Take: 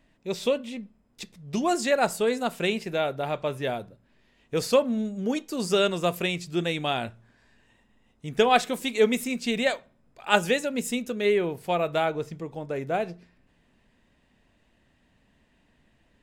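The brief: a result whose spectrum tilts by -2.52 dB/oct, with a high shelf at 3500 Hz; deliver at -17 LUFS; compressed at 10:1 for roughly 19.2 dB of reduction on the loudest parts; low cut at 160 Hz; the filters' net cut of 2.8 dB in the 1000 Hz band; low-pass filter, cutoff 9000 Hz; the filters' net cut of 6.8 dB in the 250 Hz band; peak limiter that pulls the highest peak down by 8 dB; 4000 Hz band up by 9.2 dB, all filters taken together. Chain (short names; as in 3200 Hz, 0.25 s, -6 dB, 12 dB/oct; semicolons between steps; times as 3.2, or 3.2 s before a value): HPF 160 Hz; LPF 9000 Hz; bell 250 Hz -7.5 dB; bell 1000 Hz -4.5 dB; high shelf 3500 Hz +6 dB; bell 4000 Hz +8 dB; compressor 10:1, threshold -33 dBFS; gain +21.5 dB; limiter -5 dBFS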